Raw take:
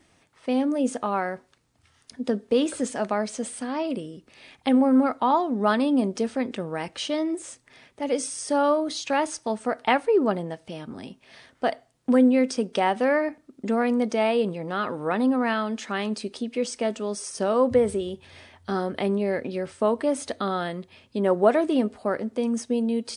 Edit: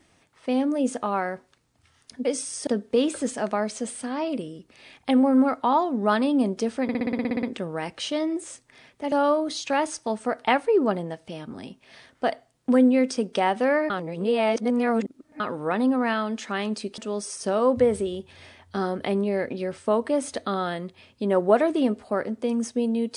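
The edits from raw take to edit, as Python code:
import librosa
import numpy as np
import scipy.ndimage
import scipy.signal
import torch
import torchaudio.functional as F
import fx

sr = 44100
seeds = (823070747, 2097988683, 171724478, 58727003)

y = fx.edit(x, sr, fx.stutter(start_s=6.41, slice_s=0.06, count=11),
    fx.move(start_s=8.1, length_s=0.42, to_s=2.25),
    fx.reverse_span(start_s=13.3, length_s=1.5),
    fx.cut(start_s=16.38, length_s=0.54), tone=tone)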